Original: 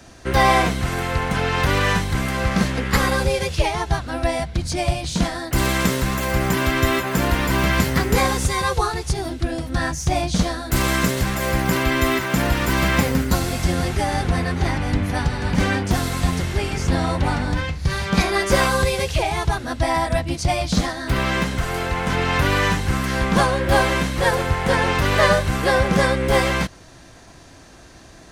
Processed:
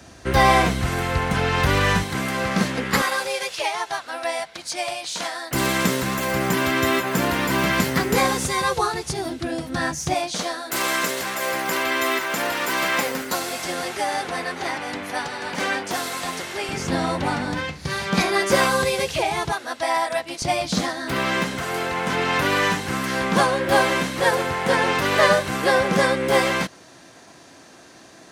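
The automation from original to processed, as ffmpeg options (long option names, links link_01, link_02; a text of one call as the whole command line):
ffmpeg -i in.wav -af "asetnsamples=nb_out_samples=441:pad=0,asendcmd='2.03 highpass f 170;3.02 highpass f 670;5.51 highpass f 160;10.14 highpass f 440;16.69 highpass f 180;19.52 highpass f 510;20.42 highpass f 200',highpass=47" out.wav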